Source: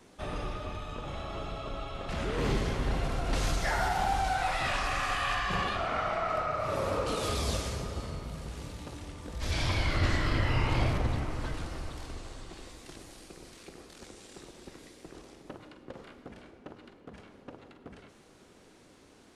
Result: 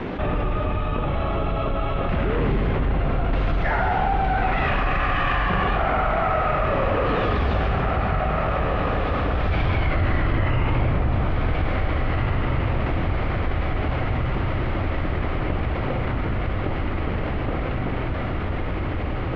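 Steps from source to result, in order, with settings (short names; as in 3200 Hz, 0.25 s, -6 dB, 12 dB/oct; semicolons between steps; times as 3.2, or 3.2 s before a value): LPF 2800 Hz 24 dB/oct; low shelf 360 Hz +4 dB; in parallel at -11 dB: soft clip -26.5 dBFS, distortion -10 dB; on the sum: diffused feedback echo 1.934 s, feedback 65%, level -6.5 dB; fast leveller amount 70%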